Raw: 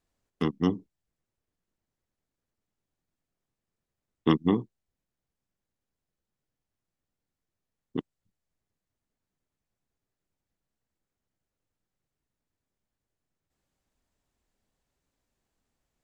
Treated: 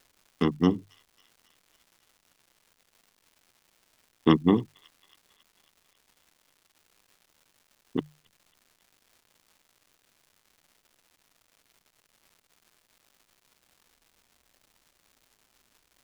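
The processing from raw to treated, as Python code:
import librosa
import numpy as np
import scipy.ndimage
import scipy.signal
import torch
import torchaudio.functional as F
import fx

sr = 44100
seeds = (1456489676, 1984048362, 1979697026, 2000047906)

y = fx.dmg_crackle(x, sr, seeds[0], per_s=350.0, level_db=-52.0)
y = fx.hum_notches(y, sr, base_hz=50, count=3)
y = fx.echo_wet_highpass(y, sr, ms=273, feedback_pct=63, hz=3000.0, wet_db=-17.0)
y = y * 10.0 ** (3.0 / 20.0)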